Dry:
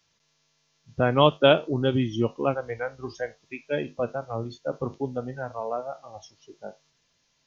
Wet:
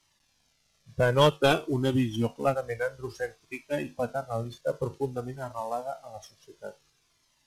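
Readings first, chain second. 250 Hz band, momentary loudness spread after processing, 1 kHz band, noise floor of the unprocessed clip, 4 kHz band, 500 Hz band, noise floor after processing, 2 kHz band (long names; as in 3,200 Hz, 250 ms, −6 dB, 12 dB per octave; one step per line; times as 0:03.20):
−2.5 dB, 21 LU, −2.5 dB, −71 dBFS, −3.0 dB, −3.0 dB, −70 dBFS, −1.0 dB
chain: variable-slope delta modulation 64 kbit/s
flanger whose copies keep moving one way falling 0.55 Hz
level +3.5 dB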